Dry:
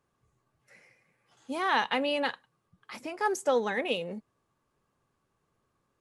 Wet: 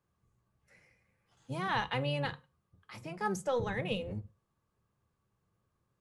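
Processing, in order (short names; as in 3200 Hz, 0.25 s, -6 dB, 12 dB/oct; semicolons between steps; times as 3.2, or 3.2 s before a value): octaver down 1 oct, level +2 dB; on a send: reverb RT60 0.25 s, pre-delay 3 ms, DRR 12.5 dB; on the sum: gain -6.5 dB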